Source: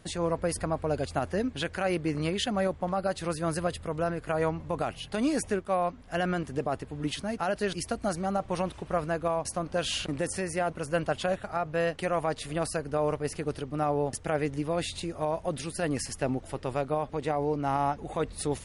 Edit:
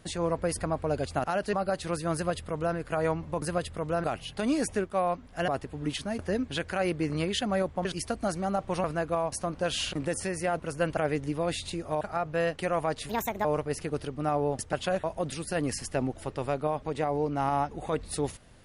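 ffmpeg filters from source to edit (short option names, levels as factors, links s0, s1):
-filter_complex "[0:a]asplit=15[s0][s1][s2][s3][s4][s5][s6][s7][s8][s9][s10][s11][s12][s13][s14];[s0]atrim=end=1.242[s15];[s1]atrim=start=7.368:end=7.662[s16];[s2]atrim=start=2.898:end=4.792[s17];[s3]atrim=start=3.508:end=4.132[s18];[s4]atrim=start=4.788:end=6.232[s19];[s5]atrim=start=6.658:end=7.372[s20];[s6]atrim=start=1.238:end=2.902[s21];[s7]atrim=start=7.658:end=8.652[s22];[s8]atrim=start=8.968:end=11.102[s23];[s9]atrim=start=14.268:end=15.312[s24];[s10]atrim=start=11.408:end=12.494[s25];[s11]atrim=start=12.49:end=12.99,asetpts=PTS-STARTPTS,asetrate=61740,aresample=44100,atrim=end_sample=15750,asetpts=PTS-STARTPTS[s26];[s12]atrim=start=12.986:end=14.272[s27];[s13]atrim=start=11.098:end=11.412[s28];[s14]atrim=start=15.308[s29];[s15][s16]acrossfade=d=0.004:c1=hsin:c2=hsin[s30];[s30][s17]acrossfade=d=0.004:c1=hsin:c2=hsin[s31];[s31][s18]acrossfade=d=0.004:c1=hsin:c2=hsin[s32];[s32][s19]acrossfade=d=0.004:c1=hsin:c2=hsin[s33];[s33][s20]acrossfade=d=0.004:c1=hsin:c2=hsin[s34];[s34][s21]acrossfade=d=0.004:c1=hsin:c2=hsin[s35];[s35][s22]acrossfade=d=0.004:c1=hsin:c2=hsin[s36];[s36][s23]acrossfade=d=0.004:c1=hsin:c2=hsin[s37];[s37][s24]acrossfade=d=0.004:c1=hsin:c2=hsin[s38];[s38][s25]acrossfade=d=0.004:c1=hsin:c2=hsin[s39];[s39][s26]acrossfade=d=0.004:c1=hsin:c2=hsin[s40];[s40][s27]acrossfade=d=0.004:c1=hsin:c2=hsin[s41];[s41][s28]acrossfade=d=0.004:c1=hsin:c2=hsin[s42];[s42][s29]acrossfade=d=0.004:c1=hsin:c2=hsin"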